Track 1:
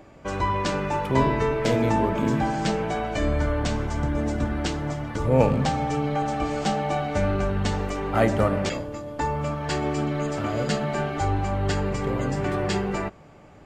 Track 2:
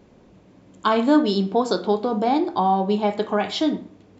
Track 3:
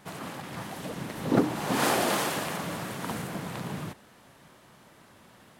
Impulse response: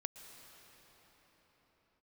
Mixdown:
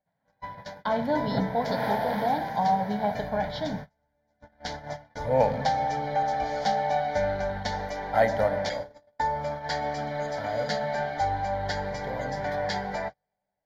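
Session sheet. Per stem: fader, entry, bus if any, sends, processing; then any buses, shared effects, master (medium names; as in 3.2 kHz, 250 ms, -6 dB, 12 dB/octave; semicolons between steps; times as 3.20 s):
+1.5 dB, 0.00 s, send -8.5 dB, tone controls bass -14 dB, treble +7 dB; auto duck -14 dB, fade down 0.30 s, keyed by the second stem
-4.0 dB, 0.00 s, send -15.5 dB, none
-2.5 dB, 0.00 s, send -8.5 dB, peaking EQ 6.8 kHz -14 dB 0.72 oct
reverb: on, pre-delay 108 ms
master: gate -29 dBFS, range -35 dB; treble shelf 3.1 kHz -10.5 dB; static phaser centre 1.8 kHz, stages 8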